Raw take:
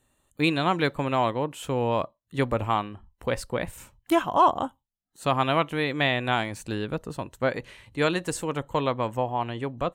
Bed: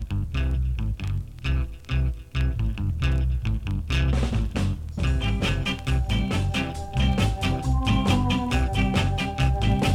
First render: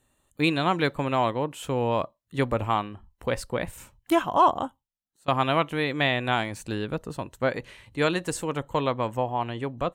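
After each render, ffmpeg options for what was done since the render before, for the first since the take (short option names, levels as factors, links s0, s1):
-filter_complex "[0:a]asplit=2[s0][s1];[s0]atrim=end=5.28,asetpts=PTS-STARTPTS,afade=t=out:st=4.53:d=0.75:silence=0.0749894[s2];[s1]atrim=start=5.28,asetpts=PTS-STARTPTS,afade=t=in:d=0.004:c=hsin:silence=0.0749894[s3];[s2][s3]concat=n=2:v=0:a=1"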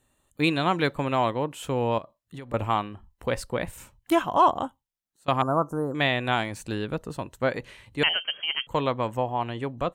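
-filter_complex "[0:a]asettb=1/sr,asplit=3[s0][s1][s2];[s0]atrim=end=1.984[s3];[s1]atrim=start=1.98:end=2.54,asetpts=PTS-STARTPTS,afade=t=in:d=0.004:c=qsin,afade=t=out:st=0.556:d=0.004:c=qsin,acompressor=threshold=0.0178:ratio=12:attack=3.2:release=140:knee=1:detection=peak[s4];[s2]atrim=start=2.536[s5];[s3][s4]acrossfade=d=0.004:c1=hsin:c2=qsin[s6];[s6][s5]acrossfade=d=0.004:c1=qsin:c2=hsin,asettb=1/sr,asplit=3[s7][s8][s9];[s7]atrim=end=5.424[s10];[s8]atrim=start=5.42:end=5.95,asetpts=PTS-STARTPTS,afade=t=in:d=0.004:c=qsin,afade=t=out:st=0.526:d=0.004:c=qsin,asuperstop=centerf=2800:order=12:qfactor=0.68[s11];[s9]atrim=start=5.946[s12];[s10][s11]acrossfade=d=0.004:c1=hsin:c2=qsin[s13];[s13][s12]acrossfade=d=0.004:c1=qsin:c2=hsin,asettb=1/sr,asplit=3[s14][s15][s16];[s14]atrim=end=8.034[s17];[s15]atrim=start=8.03:end=8.67,asetpts=PTS-STARTPTS,afade=t=in:d=0.004:c=qsin,afade=t=out:st=0.636:d=0.004:c=qsin,lowpass=f=2800:t=q:w=0.5098,lowpass=f=2800:t=q:w=0.6013,lowpass=f=2800:t=q:w=0.9,lowpass=f=2800:t=q:w=2.563,afreqshift=-3300[s18];[s16]atrim=start=8.666[s19];[s17][s18]acrossfade=d=0.004:c1=hsin:c2=qsin[s20];[s20][s19]acrossfade=d=0.004:c1=qsin:c2=hsin"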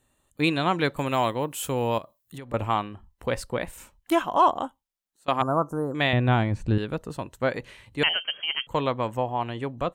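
-filter_complex "[0:a]asettb=1/sr,asplit=3[s0][s1][s2];[s0]atrim=end=0.964[s3];[s1]atrim=start=0.96:end=2.38,asetpts=PTS-STARTPTS,afade=t=in:d=0.004:c=qsin,afade=t=out:st=1.416:d=0.004:c=qsin,aemphasis=mode=production:type=50fm[s4];[s2]atrim=start=2.376[s5];[s3][s4]acrossfade=d=0.004:c1=hsin:c2=qsin[s6];[s6][s5]acrossfade=d=0.004:c1=qsin:c2=hsin,asettb=1/sr,asplit=3[s7][s8][s9];[s7]atrim=end=3.584[s10];[s8]atrim=start=3.58:end=5.41,asetpts=PTS-STARTPTS,afade=t=in:d=0.004:c=qsin,afade=t=out:st=1.826:d=0.004:c=qsin,equalizer=f=110:w=1.5:g=-11.5[s11];[s9]atrim=start=5.406[s12];[s10][s11]acrossfade=d=0.004:c1=hsin:c2=qsin[s13];[s13][s12]acrossfade=d=0.004:c1=qsin:c2=hsin,asettb=1/sr,asplit=3[s14][s15][s16];[s14]atrim=end=6.134[s17];[s15]atrim=start=6.13:end=6.78,asetpts=PTS-STARTPTS,afade=t=in:d=0.004:c=qsin,afade=t=out:st=0.646:d=0.004:c=qsin,aemphasis=mode=reproduction:type=riaa[s18];[s16]atrim=start=6.776[s19];[s17][s18]acrossfade=d=0.004:c1=hsin:c2=qsin[s20];[s20][s19]acrossfade=d=0.004:c1=qsin:c2=hsin"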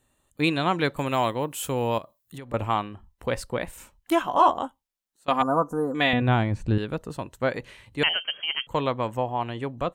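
-filter_complex "[0:a]asettb=1/sr,asplit=3[s0][s1][s2];[s0]atrim=end=4.234[s3];[s1]atrim=start=4.23:end=4.63,asetpts=PTS-STARTPTS,afade=t=in:d=0.004:c=qsin,afade=t=out:st=0.396:d=0.004:c=qsin,asplit=2[s4][s5];[s5]adelay=15,volume=0.501[s6];[s4][s6]amix=inputs=2:normalize=0,atrim=end_sample=17640[s7];[s2]atrim=start=4.626[s8];[s3][s7]acrossfade=d=0.004:c1=hsin:c2=qsin[s9];[s9][s8]acrossfade=d=0.004:c1=qsin:c2=hsin,asettb=1/sr,asplit=3[s10][s11][s12];[s10]atrim=end=5.304[s13];[s11]atrim=start=5.3:end=6.22,asetpts=PTS-STARTPTS,afade=t=in:d=0.004:c=qsin,afade=t=out:st=0.916:d=0.004:c=qsin,aecho=1:1:4.1:0.6,atrim=end_sample=40572[s14];[s12]atrim=start=6.216[s15];[s13][s14]acrossfade=d=0.004:c1=hsin:c2=qsin[s16];[s16][s15]acrossfade=d=0.004:c1=qsin:c2=hsin"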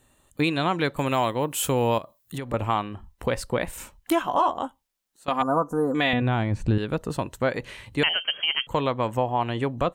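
-filter_complex "[0:a]asplit=2[s0][s1];[s1]acompressor=threshold=0.0282:ratio=6,volume=1.26[s2];[s0][s2]amix=inputs=2:normalize=0,alimiter=limit=0.251:level=0:latency=1:release=336"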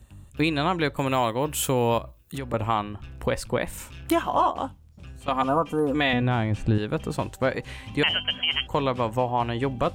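-filter_complex "[1:a]volume=0.106[s0];[0:a][s0]amix=inputs=2:normalize=0"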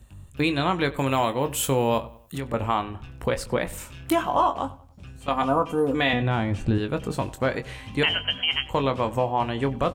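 -filter_complex "[0:a]asplit=2[s0][s1];[s1]adelay=22,volume=0.335[s2];[s0][s2]amix=inputs=2:normalize=0,asplit=2[s3][s4];[s4]adelay=95,lowpass=f=3500:p=1,volume=0.112,asplit=2[s5][s6];[s6]adelay=95,lowpass=f=3500:p=1,volume=0.4,asplit=2[s7][s8];[s8]adelay=95,lowpass=f=3500:p=1,volume=0.4[s9];[s3][s5][s7][s9]amix=inputs=4:normalize=0"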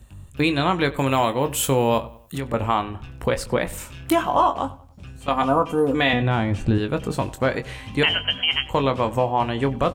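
-af "volume=1.41"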